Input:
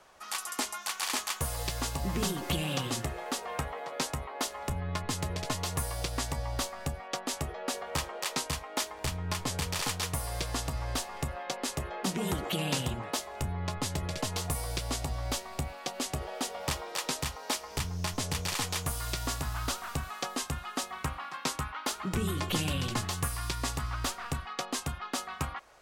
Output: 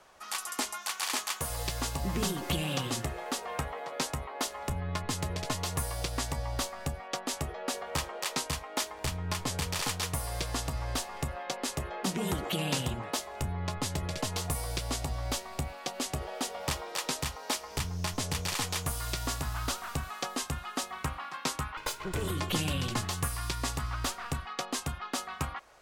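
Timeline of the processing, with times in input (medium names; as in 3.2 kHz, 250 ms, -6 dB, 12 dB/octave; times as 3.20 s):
0.77–1.50 s: bass shelf 120 Hz -9 dB
21.77–22.31 s: comb filter that takes the minimum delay 2 ms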